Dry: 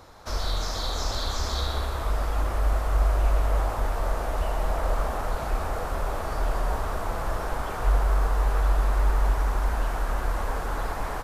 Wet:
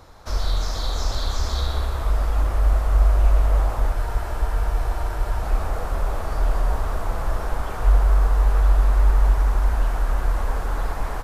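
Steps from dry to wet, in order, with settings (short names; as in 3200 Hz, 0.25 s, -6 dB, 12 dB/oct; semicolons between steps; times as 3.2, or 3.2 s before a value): low shelf 94 Hz +7.5 dB; spectral freeze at 3.94, 1.49 s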